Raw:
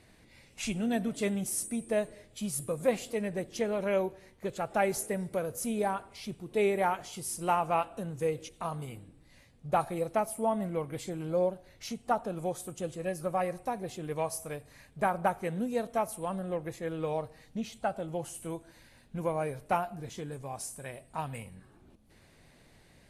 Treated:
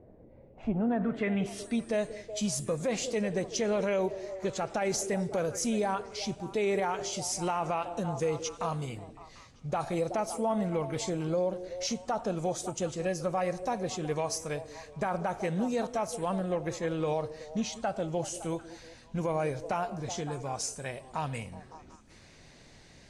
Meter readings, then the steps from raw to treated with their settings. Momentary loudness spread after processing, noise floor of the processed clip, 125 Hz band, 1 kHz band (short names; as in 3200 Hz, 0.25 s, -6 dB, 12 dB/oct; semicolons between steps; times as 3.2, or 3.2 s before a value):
7 LU, -55 dBFS, +3.0 dB, -1.0 dB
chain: low-pass sweep 550 Hz -> 6200 Hz, 0.47–1.97; delay with a stepping band-pass 0.186 s, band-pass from 340 Hz, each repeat 0.7 oct, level -12 dB; limiter -25.5 dBFS, peak gain reduction 11.5 dB; gain +4 dB